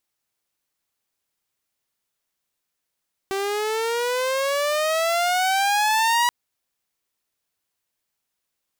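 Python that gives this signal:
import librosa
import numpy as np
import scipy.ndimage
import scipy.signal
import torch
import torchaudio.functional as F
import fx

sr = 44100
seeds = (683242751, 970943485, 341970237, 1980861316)

y = fx.riser_tone(sr, length_s=2.98, level_db=-14, wave='saw', hz=386.0, rise_st=16.0, swell_db=6.5)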